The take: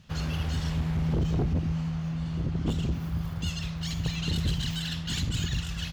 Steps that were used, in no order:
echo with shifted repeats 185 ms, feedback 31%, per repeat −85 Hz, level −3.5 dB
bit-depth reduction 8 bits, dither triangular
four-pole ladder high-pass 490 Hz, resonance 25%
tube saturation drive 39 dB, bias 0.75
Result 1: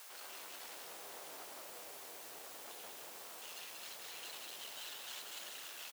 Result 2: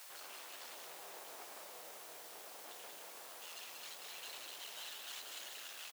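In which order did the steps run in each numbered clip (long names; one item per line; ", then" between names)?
tube saturation, then bit-depth reduction, then four-pole ladder high-pass, then echo with shifted repeats
tube saturation, then echo with shifted repeats, then bit-depth reduction, then four-pole ladder high-pass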